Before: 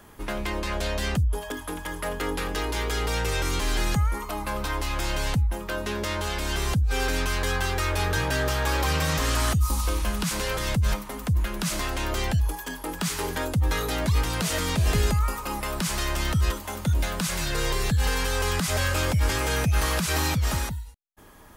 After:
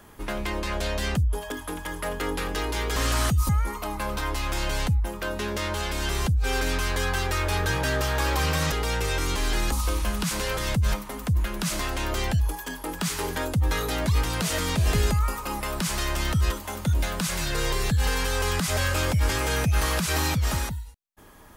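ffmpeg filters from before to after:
ffmpeg -i in.wav -filter_complex "[0:a]asplit=5[link_01][link_02][link_03][link_04][link_05];[link_01]atrim=end=2.962[link_06];[link_02]atrim=start=9.188:end=9.722[link_07];[link_03]atrim=start=3.958:end=9.192[link_08];[link_04]atrim=start=2.958:end=3.962[link_09];[link_05]atrim=start=9.718[link_10];[link_06][link_07]acrossfade=duration=0.004:curve1=hsin:curve2=hsin[link_11];[link_11][link_08]acrossfade=duration=0.004:curve1=hsin:curve2=hsin[link_12];[link_12][link_09]acrossfade=duration=0.004:curve1=hsin:curve2=hsin[link_13];[link_13][link_10]acrossfade=duration=0.004:curve1=hsin:curve2=hsin" out.wav

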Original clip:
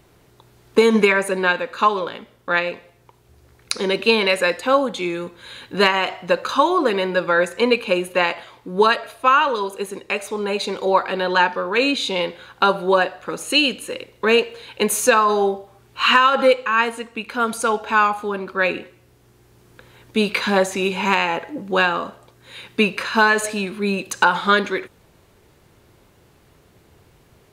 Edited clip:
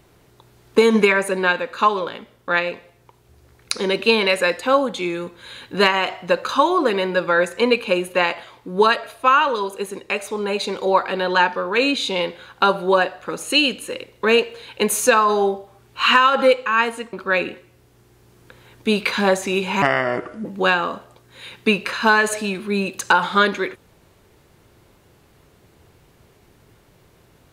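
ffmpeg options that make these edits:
ffmpeg -i in.wav -filter_complex "[0:a]asplit=4[link_01][link_02][link_03][link_04];[link_01]atrim=end=17.132[link_05];[link_02]atrim=start=18.418:end=21.114[link_06];[link_03]atrim=start=21.11:end=21.57,asetpts=PTS-STARTPTS,asetrate=32193,aresample=44100,atrim=end_sample=27789,asetpts=PTS-STARTPTS[link_07];[link_04]atrim=start=21.566[link_08];[link_05][link_06]acrossfade=duration=0.004:curve1=hsin:curve2=hsin[link_09];[link_09][link_07]acrossfade=duration=0.004:curve1=hsin:curve2=hsin[link_10];[link_10][link_08]acrossfade=duration=0.004:curve1=hsin:curve2=hsin" out.wav

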